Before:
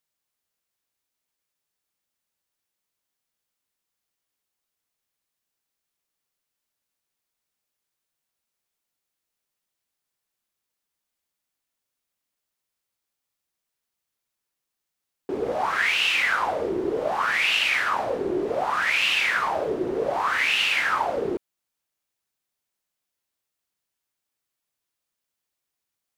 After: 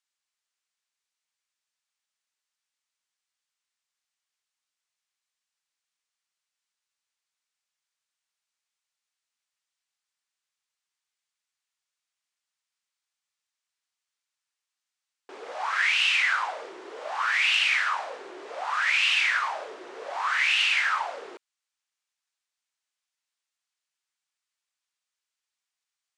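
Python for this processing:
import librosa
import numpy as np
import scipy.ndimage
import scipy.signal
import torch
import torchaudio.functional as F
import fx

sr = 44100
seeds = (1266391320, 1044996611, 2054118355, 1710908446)

y = scipy.signal.sosfilt(scipy.signal.butter(4, 8600.0, 'lowpass', fs=sr, output='sos'), x)
y = 10.0 ** (-11.0 / 20.0) * np.tanh(y / 10.0 ** (-11.0 / 20.0))
y = scipy.signal.sosfilt(scipy.signal.butter(2, 1100.0, 'highpass', fs=sr, output='sos'), y)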